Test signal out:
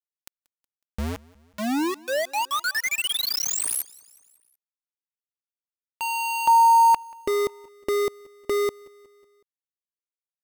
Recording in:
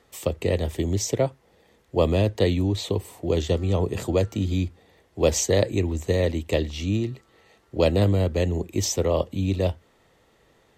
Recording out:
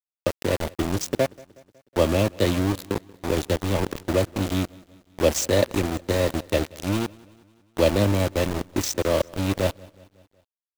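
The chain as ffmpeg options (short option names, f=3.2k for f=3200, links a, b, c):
-af "aecho=1:1:3.4:0.41,aeval=exprs='val(0)*gte(abs(val(0)),0.0708)':c=same,aecho=1:1:184|368|552|736:0.0631|0.0353|0.0198|0.0111"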